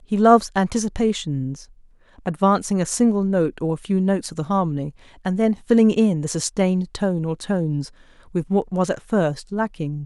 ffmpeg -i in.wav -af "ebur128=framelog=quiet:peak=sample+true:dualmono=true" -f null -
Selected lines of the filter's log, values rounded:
Integrated loudness:
  I:         -18.1 LUFS
  Threshold: -28.4 LUFS
Loudness range:
  LRA:         2.6 LU
  Threshold: -38.5 LUFS
  LRA low:   -20.2 LUFS
  LRA high:  -17.6 LUFS
Sample peak:
  Peak:       -1.6 dBFS
True peak:
  Peak:       -1.6 dBFS